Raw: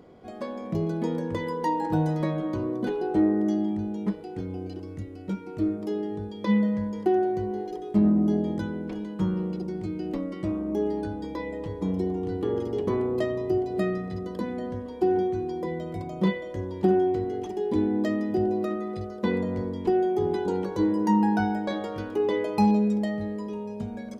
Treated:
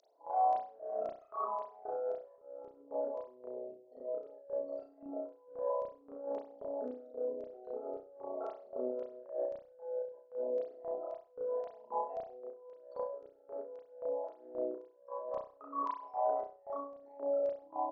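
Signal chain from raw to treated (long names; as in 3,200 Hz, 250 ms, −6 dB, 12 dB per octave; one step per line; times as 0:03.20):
spectral envelope exaggerated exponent 3
Chebyshev high-pass filter 420 Hz, order 2
flat-topped bell 3,700 Hz +16 dB 1.1 octaves
mains-hum notches 50/100/150/200/250/300/350/400/450 Hz
compressor whose output falls as the input rises −35 dBFS, ratio −0.5
auto-filter band-pass square 1.4 Hz 820–4,500 Hz
high-frequency loss of the air 200 metres
slap from a distant wall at 29 metres, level −25 dB
convolution reverb, pre-delay 43 ms, DRR −4.5 dB
wrong playback speed 33 rpm record played at 45 rpm
level +2 dB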